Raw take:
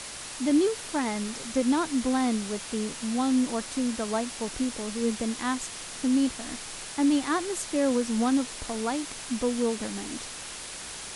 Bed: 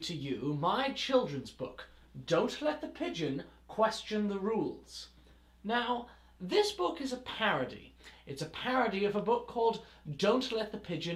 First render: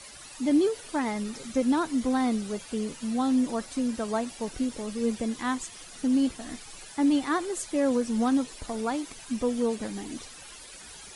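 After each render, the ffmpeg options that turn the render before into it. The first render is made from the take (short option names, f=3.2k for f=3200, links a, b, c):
-af "afftdn=nr=13:nf=-40"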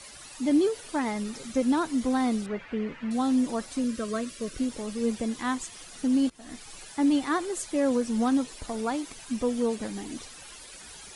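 -filter_complex "[0:a]asettb=1/sr,asplit=3[a][b][c];[a]atrim=end=2.464[d];[b]atrim=start=2.46:end=3.11,asetpts=PTS-STARTPTS,afade=t=in:d=0.004:c=qsin,afade=t=out:st=0.646:d=0.004:c=qsin,lowpass=f=2k:t=q:w=2.3[e];[c]atrim=start=3.106[f];[d][e]acrossfade=d=0.004:c1=hsin:c2=qsin[g];[g][f]acrossfade=d=0.004:c1=qsin:c2=hsin,asettb=1/sr,asplit=3[h][i][j];[h]atrim=end=3.844[k];[i]atrim=start=3.84:end=4.58,asetpts=PTS-STARTPTS,afade=t=in:d=0.004:c=qsin,afade=t=out:st=0.736:d=0.004:c=qsin,asuperstop=centerf=810:order=8:qfactor=2.3[l];[j]atrim=start=4.576[m];[k][l]acrossfade=d=0.004:c1=hsin:c2=qsin[n];[n][m]acrossfade=d=0.004:c1=qsin:c2=hsin,asplit=2[o][p];[o]atrim=end=6.3,asetpts=PTS-STARTPTS,afade=t=out:st=6.296:d=0.004:c=hsin:silence=0.0707946[q];[p]atrim=start=6.3,asetpts=PTS-STARTPTS,afade=t=in:d=0.47:c=qsin:silence=0.0707946[r];[q][r]concat=n=2:v=0:a=1"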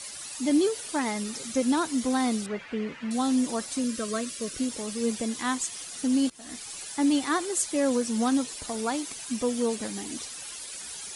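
-af "highpass=f=100:p=1,equalizer=f=9.6k:w=0.32:g=8.5"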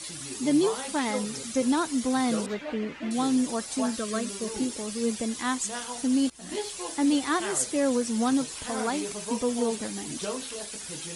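-filter_complex "[1:a]volume=-5.5dB[a];[0:a][a]amix=inputs=2:normalize=0"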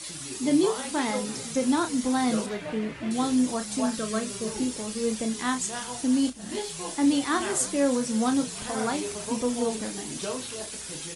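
-filter_complex "[0:a]asplit=2[a][b];[b]adelay=32,volume=-8dB[c];[a][c]amix=inputs=2:normalize=0,asplit=6[d][e][f][g][h][i];[e]adelay=324,afreqshift=-45,volume=-20.5dB[j];[f]adelay=648,afreqshift=-90,volume=-24.8dB[k];[g]adelay=972,afreqshift=-135,volume=-29.1dB[l];[h]adelay=1296,afreqshift=-180,volume=-33.4dB[m];[i]adelay=1620,afreqshift=-225,volume=-37.7dB[n];[d][j][k][l][m][n]amix=inputs=6:normalize=0"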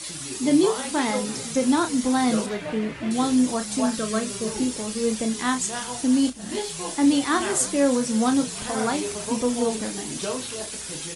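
-af "volume=3.5dB"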